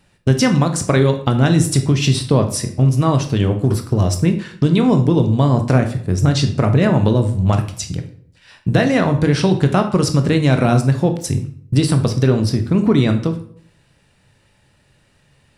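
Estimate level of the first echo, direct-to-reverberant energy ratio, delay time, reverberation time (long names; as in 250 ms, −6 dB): no echo audible, 6.0 dB, no echo audible, 0.60 s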